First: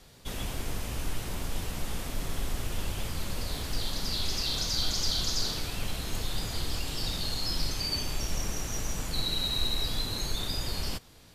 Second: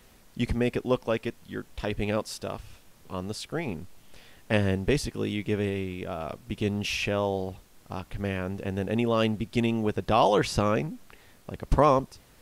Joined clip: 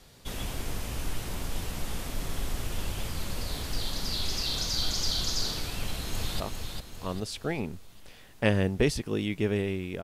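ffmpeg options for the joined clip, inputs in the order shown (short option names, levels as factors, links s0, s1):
-filter_complex "[0:a]apad=whole_dur=10.03,atrim=end=10.03,atrim=end=6.402[s0];[1:a]atrim=start=2.478:end=6.11[s1];[s0][s1]acrossfade=d=0.004:c1=hsin:c2=hsin,asplit=2[s2][s3];[s3]afade=t=in:st=5.77:d=0.01,afade=t=out:st=6.4:d=0.01,aecho=0:1:400|800|1200|1600|2000|2400:0.562341|0.253054|0.113874|0.0512434|0.0230595|0.0103768[s4];[s2][s4]amix=inputs=2:normalize=0"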